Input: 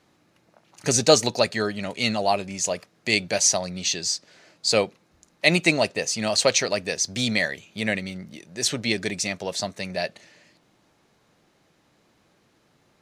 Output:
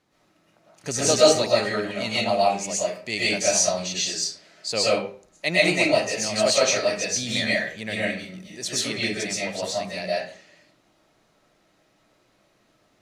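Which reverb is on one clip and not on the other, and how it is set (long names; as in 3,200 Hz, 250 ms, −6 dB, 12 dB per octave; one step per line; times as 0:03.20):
comb and all-pass reverb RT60 0.46 s, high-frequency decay 0.7×, pre-delay 85 ms, DRR −7.5 dB
level −7.5 dB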